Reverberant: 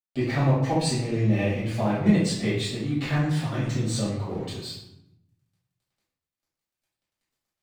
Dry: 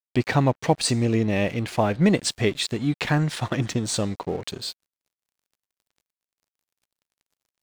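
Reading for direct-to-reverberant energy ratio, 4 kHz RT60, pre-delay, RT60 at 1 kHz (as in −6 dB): −10.5 dB, 0.55 s, 4 ms, 0.75 s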